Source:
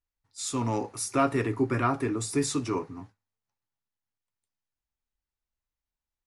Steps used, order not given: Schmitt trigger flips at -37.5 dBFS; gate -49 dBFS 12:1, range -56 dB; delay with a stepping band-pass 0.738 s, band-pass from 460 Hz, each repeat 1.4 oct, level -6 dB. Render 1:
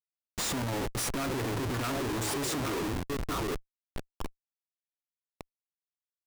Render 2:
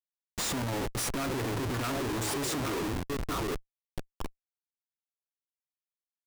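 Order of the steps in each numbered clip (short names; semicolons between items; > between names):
gate > delay with a stepping band-pass > Schmitt trigger; delay with a stepping band-pass > gate > Schmitt trigger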